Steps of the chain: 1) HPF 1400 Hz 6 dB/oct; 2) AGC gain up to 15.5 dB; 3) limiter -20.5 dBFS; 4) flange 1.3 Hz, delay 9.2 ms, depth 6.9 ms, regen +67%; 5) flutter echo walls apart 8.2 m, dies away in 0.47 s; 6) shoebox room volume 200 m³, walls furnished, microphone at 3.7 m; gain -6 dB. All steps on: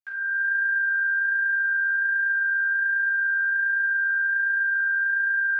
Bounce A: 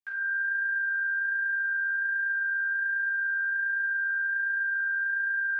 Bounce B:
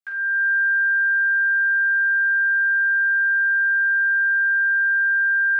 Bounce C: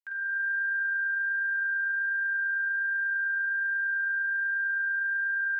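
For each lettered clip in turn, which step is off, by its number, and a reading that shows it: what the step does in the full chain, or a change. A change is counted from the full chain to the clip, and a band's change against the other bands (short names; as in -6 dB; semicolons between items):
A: 2, loudness change -5.0 LU; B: 4, crest factor change -3.0 dB; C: 6, echo-to-direct 8.5 dB to -5.0 dB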